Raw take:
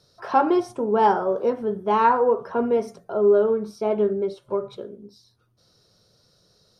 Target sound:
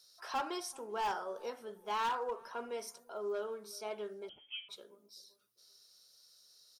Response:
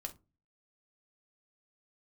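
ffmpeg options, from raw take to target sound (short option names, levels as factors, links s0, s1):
-filter_complex "[0:a]aderivative,volume=50.1,asoftclip=hard,volume=0.02,asplit=2[s0][s1];[s1]adelay=389,lowpass=f=820:p=1,volume=0.0944,asplit=2[s2][s3];[s3]adelay=389,lowpass=f=820:p=1,volume=0.36,asplit=2[s4][s5];[s5]adelay=389,lowpass=f=820:p=1,volume=0.36[s6];[s2][s4][s6]amix=inputs=3:normalize=0[s7];[s0][s7]amix=inputs=2:normalize=0,asettb=1/sr,asplit=3[s8][s9][s10];[s8]atrim=end=4.294[s11];[s9]atrim=start=4.29:end=4.69,asetpts=PTS-STARTPTS,afade=t=in:d=0.004:c=qsin,afade=t=out:st=0.396:d=0.004:c=qsin,lowpass=f=3100:t=q:w=0.5098,lowpass=f=3100:t=q:w=0.6013,lowpass=f=3100:t=q:w=0.9,lowpass=f=3100:t=q:w=2.563,afreqshift=-3600[s12];[s10]atrim=start=4.686[s13];[s11][s12]acrossfade=d=0.004:c1=hsin:c2=qsin[s14];[s14][s13]acrossfade=d=0.004:c1=qsin:c2=hsin,volume=1.5"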